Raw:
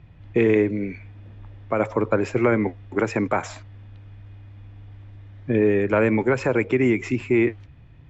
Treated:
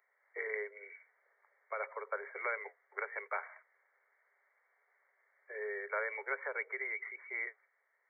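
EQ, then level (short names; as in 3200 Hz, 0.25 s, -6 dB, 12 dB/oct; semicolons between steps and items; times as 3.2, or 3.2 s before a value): rippled Chebyshev high-pass 400 Hz, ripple 3 dB; brick-wall FIR low-pass 2300 Hz; differentiator; +4.0 dB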